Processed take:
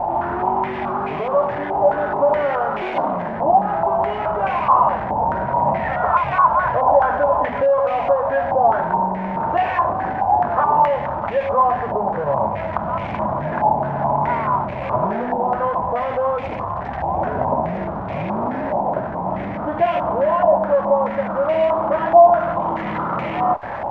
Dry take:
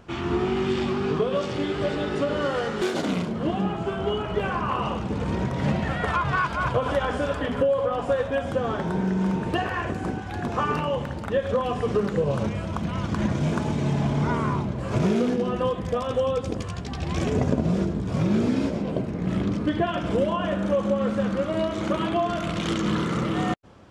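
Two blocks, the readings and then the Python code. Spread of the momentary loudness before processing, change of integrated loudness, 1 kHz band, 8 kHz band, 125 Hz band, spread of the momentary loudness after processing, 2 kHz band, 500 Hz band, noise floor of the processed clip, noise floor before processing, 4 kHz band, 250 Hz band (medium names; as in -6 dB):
4 LU, +6.5 dB, +13.5 dB, under -20 dB, -3.5 dB, 8 LU, +3.5 dB, +7.0 dB, -26 dBFS, -32 dBFS, no reading, -3.5 dB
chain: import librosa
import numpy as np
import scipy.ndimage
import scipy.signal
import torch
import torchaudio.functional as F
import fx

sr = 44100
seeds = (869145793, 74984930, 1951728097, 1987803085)

y = x + 0.5 * 10.0 ** (-23.0 / 20.0) * np.sign(x)
y = fx.band_shelf(y, sr, hz=750.0, db=13.5, octaves=1.0)
y = fx.filter_held_lowpass(y, sr, hz=4.7, low_hz=860.0, high_hz=2300.0)
y = F.gain(torch.from_numpy(y), -7.5).numpy()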